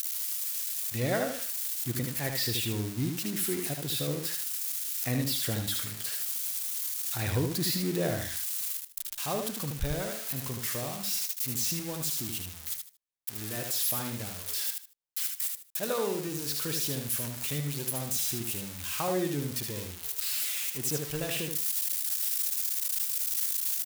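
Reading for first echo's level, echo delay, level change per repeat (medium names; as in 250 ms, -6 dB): -5.0 dB, 76 ms, -13.0 dB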